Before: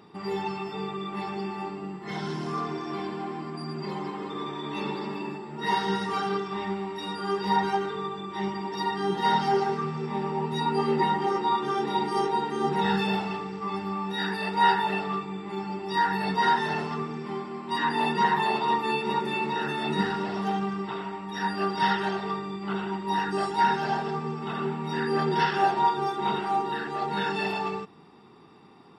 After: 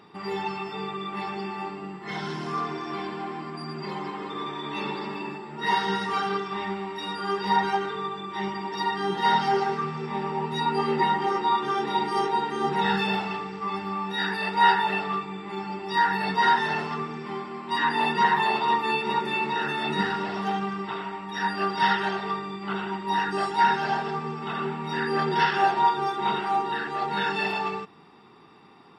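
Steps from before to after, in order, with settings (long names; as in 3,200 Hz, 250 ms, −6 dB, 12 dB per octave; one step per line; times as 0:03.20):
parametric band 2,000 Hz +6 dB 2.9 octaves
level −2 dB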